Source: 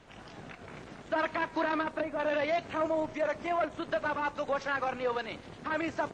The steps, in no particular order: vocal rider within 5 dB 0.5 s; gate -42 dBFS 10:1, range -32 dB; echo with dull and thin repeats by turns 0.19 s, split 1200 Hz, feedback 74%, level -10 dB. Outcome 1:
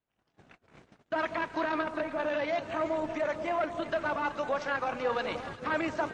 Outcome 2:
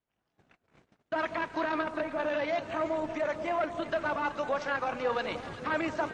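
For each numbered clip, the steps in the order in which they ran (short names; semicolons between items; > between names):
echo with dull and thin repeats by turns > gate > vocal rider; vocal rider > echo with dull and thin repeats by turns > gate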